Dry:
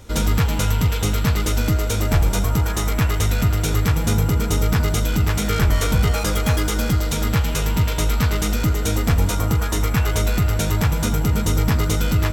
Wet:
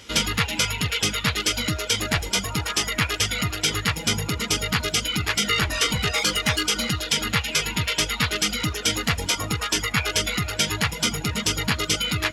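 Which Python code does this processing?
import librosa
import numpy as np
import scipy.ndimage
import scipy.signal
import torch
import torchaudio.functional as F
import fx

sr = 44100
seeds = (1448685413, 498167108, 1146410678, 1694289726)

y = fx.weighting(x, sr, curve='D')
y = fx.formant_shift(y, sr, semitones=-2)
y = fx.dereverb_blind(y, sr, rt60_s=0.99)
y = F.gain(torch.from_numpy(y), -2.0).numpy()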